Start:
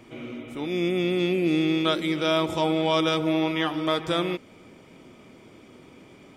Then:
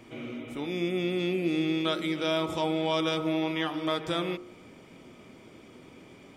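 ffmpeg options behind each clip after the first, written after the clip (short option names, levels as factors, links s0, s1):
-filter_complex "[0:a]bandreject=f=51.03:t=h:w=4,bandreject=f=102.06:t=h:w=4,bandreject=f=153.09:t=h:w=4,bandreject=f=204.12:t=h:w=4,bandreject=f=255.15:t=h:w=4,bandreject=f=306.18:t=h:w=4,bandreject=f=357.21:t=h:w=4,bandreject=f=408.24:t=h:w=4,bandreject=f=459.27:t=h:w=4,bandreject=f=510.3:t=h:w=4,bandreject=f=561.33:t=h:w=4,bandreject=f=612.36:t=h:w=4,bandreject=f=663.39:t=h:w=4,bandreject=f=714.42:t=h:w=4,bandreject=f=765.45:t=h:w=4,bandreject=f=816.48:t=h:w=4,bandreject=f=867.51:t=h:w=4,bandreject=f=918.54:t=h:w=4,bandreject=f=969.57:t=h:w=4,bandreject=f=1020.6:t=h:w=4,bandreject=f=1071.63:t=h:w=4,bandreject=f=1122.66:t=h:w=4,bandreject=f=1173.69:t=h:w=4,bandreject=f=1224.72:t=h:w=4,bandreject=f=1275.75:t=h:w=4,bandreject=f=1326.78:t=h:w=4,bandreject=f=1377.81:t=h:w=4,bandreject=f=1428.84:t=h:w=4,bandreject=f=1479.87:t=h:w=4,bandreject=f=1530.9:t=h:w=4,asplit=2[s0][s1];[s1]acompressor=threshold=0.0251:ratio=6,volume=0.944[s2];[s0][s2]amix=inputs=2:normalize=0,volume=0.473"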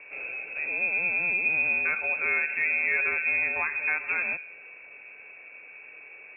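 -af "aeval=exprs='val(0)+0.00316*sin(2*PI*530*n/s)':c=same,lowpass=f=2400:t=q:w=0.5098,lowpass=f=2400:t=q:w=0.6013,lowpass=f=2400:t=q:w=0.9,lowpass=f=2400:t=q:w=2.563,afreqshift=-2800,volume=1.26"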